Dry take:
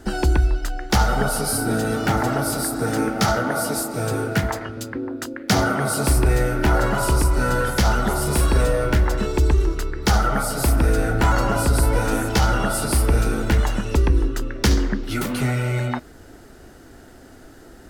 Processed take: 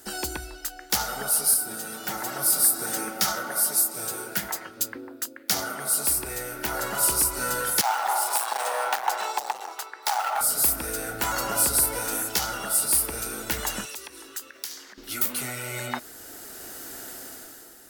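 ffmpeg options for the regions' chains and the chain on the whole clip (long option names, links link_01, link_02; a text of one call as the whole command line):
ffmpeg -i in.wav -filter_complex "[0:a]asettb=1/sr,asplit=3[link_01][link_02][link_03];[link_01]atrim=end=1.544[link_04];[link_02]atrim=start=1.54:end=4.8,asetpts=PTS-STARTPTS,afade=type=in:duration=0.004:curve=qsin,afade=type=out:start_time=3.256:duration=0.004:curve=qsin,aecho=1:1:5.4:0.5,atrim=end_sample=143766,flanger=delay=4.5:depth=9.7:regen=81:speed=1.3:shape=triangular[link_05];[link_03]atrim=start=4.796[link_06];[link_04][link_05]acrossfade=duration=0.004:curve1=hsin:curve2=qsin[link_07];[link_07][link_06]acrossfade=duration=0.004:curve1=qsin:curve2=hsin,asettb=1/sr,asplit=3[link_08][link_09][link_10];[link_08]atrim=end=7.814[link_11];[link_09]atrim=start=7.81:end=10.41,asetpts=PTS-STARTPTS,afade=type=in:duration=0.004:curve=qsin,afade=type=out:start_time=2.596:duration=0.004:curve=qsin,highshelf=frequency=7200:gain=-10,asoftclip=type=hard:threshold=-18.5dB,highpass=frequency=810:width_type=q:width=6.5[link_12];[link_10]atrim=start=10.406[link_13];[link_11][link_12]acrossfade=duration=0.004:curve1=hsin:curve2=qsin[link_14];[link_14][link_13]acrossfade=duration=0.004:curve1=qsin:curve2=hsin,asettb=1/sr,asplit=3[link_15][link_16][link_17];[link_15]atrim=end=13.854[link_18];[link_16]atrim=start=13.85:end=14.98,asetpts=PTS-STARTPTS,afade=type=in:duration=0.004:curve=qsin,afade=type=out:start_time=1.126:duration=0.004:curve=qsin,highpass=frequency=1200:poles=1,acompressor=threshold=-36dB:ratio=5:attack=3.2:release=140:knee=1:detection=peak[link_19];[link_17]atrim=start=14.976[link_20];[link_18][link_19]acrossfade=duration=0.004:curve1=hsin:curve2=qsin[link_21];[link_21][link_20]acrossfade=duration=0.004:curve1=qsin:curve2=hsin,aemphasis=mode=production:type=riaa,dynaudnorm=framelen=140:gausssize=9:maxgain=11.5dB,volume=-7dB" out.wav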